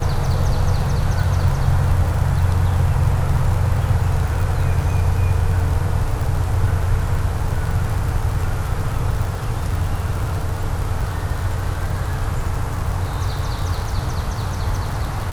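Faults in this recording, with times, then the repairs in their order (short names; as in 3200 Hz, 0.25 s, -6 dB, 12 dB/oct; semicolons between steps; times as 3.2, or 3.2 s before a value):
crackle 59/s -24 dBFS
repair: de-click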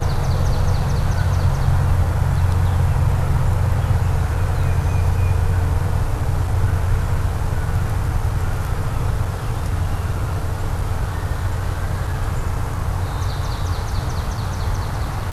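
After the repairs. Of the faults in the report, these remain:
none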